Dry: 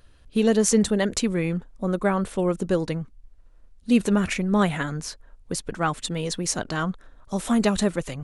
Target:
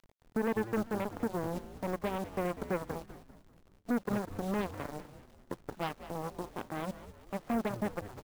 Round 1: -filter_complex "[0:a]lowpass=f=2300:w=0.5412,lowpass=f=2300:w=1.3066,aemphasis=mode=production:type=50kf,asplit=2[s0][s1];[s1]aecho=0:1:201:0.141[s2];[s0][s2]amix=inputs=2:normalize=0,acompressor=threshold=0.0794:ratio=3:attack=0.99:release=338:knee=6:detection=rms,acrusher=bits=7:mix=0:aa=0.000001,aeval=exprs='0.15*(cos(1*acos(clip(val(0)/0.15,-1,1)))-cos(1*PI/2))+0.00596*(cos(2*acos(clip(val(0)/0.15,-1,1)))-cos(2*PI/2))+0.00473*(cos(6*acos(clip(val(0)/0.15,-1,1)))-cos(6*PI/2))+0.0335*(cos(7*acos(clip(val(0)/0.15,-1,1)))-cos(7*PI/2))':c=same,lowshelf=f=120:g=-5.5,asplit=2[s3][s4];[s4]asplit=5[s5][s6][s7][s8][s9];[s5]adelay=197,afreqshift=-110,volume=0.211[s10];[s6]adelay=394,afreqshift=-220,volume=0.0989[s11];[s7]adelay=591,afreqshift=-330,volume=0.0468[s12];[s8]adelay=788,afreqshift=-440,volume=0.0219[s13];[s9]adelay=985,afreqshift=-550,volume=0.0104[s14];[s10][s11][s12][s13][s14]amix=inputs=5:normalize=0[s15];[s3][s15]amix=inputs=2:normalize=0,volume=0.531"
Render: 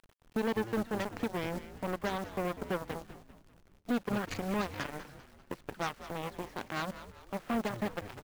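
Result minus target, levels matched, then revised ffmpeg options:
2 kHz band +3.5 dB
-filter_complex "[0:a]lowpass=f=1000:w=0.5412,lowpass=f=1000:w=1.3066,aemphasis=mode=production:type=50kf,asplit=2[s0][s1];[s1]aecho=0:1:201:0.141[s2];[s0][s2]amix=inputs=2:normalize=0,acompressor=threshold=0.0794:ratio=3:attack=0.99:release=338:knee=6:detection=rms,acrusher=bits=7:mix=0:aa=0.000001,aeval=exprs='0.15*(cos(1*acos(clip(val(0)/0.15,-1,1)))-cos(1*PI/2))+0.00596*(cos(2*acos(clip(val(0)/0.15,-1,1)))-cos(2*PI/2))+0.00473*(cos(6*acos(clip(val(0)/0.15,-1,1)))-cos(6*PI/2))+0.0335*(cos(7*acos(clip(val(0)/0.15,-1,1)))-cos(7*PI/2))':c=same,lowshelf=f=120:g=-5.5,asplit=2[s3][s4];[s4]asplit=5[s5][s6][s7][s8][s9];[s5]adelay=197,afreqshift=-110,volume=0.211[s10];[s6]adelay=394,afreqshift=-220,volume=0.0989[s11];[s7]adelay=591,afreqshift=-330,volume=0.0468[s12];[s8]adelay=788,afreqshift=-440,volume=0.0219[s13];[s9]adelay=985,afreqshift=-550,volume=0.0104[s14];[s10][s11][s12][s13][s14]amix=inputs=5:normalize=0[s15];[s3][s15]amix=inputs=2:normalize=0,volume=0.531"

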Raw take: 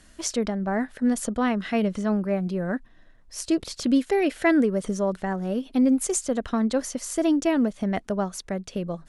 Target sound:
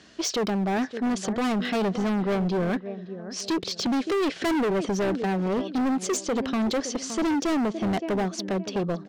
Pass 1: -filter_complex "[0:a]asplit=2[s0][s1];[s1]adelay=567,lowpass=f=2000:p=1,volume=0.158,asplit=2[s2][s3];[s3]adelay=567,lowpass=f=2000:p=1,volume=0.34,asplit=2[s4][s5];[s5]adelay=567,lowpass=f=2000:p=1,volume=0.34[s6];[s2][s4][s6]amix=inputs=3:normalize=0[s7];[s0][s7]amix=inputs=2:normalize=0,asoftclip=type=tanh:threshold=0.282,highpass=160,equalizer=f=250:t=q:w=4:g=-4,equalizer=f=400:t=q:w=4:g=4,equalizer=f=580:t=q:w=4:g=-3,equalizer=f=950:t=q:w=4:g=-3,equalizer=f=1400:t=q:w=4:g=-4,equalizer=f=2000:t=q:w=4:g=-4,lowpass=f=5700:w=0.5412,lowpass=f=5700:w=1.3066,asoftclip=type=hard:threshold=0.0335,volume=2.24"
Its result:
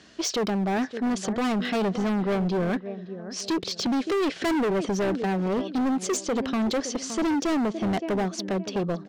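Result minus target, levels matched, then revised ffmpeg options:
saturation: distortion +15 dB
-filter_complex "[0:a]asplit=2[s0][s1];[s1]adelay=567,lowpass=f=2000:p=1,volume=0.158,asplit=2[s2][s3];[s3]adelay=567,lowpass=f=2000:p=1,volume=0.34,asplit=2[s4][s5];[s5]adelay=567,lowpass=f=2000:p=1,volume=0.34[s6];[s2][s4][s6]amix=inputs=3:normalize=0[s7];[s0][s7]amix=inputs=2:normalize=0,asoftclip=type=tanh:threshold=0.708,highpass=160,equalizer=f=250:t=q:w=4:g=-4,equalizer=f=400:t=q:w=4:g=4,equalizer=f=580:t=q:w=4:g=-3,equalizer=f=950:t=q:w=4:g=-3,equalizer=f=1400:t=q:w=4:g=-4,equalizer=f=2000:t=q:w=4:g=-4,lowpass=f=5700:w=0.5412,lowpass=f=5700:w=1.3066,asoftclip=type=hard:threshold=0.0335,volume=2.24"

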